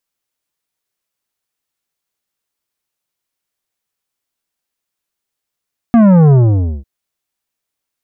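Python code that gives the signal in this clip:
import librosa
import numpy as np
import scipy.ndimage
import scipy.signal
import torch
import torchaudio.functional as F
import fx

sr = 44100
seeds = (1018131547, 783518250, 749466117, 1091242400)

y = fx.sub_drop(sr, level_db=-5.5, start_hz=240.0, length_s=0.9, drive_db=11, fade_s=0.52, end_hz=65.0)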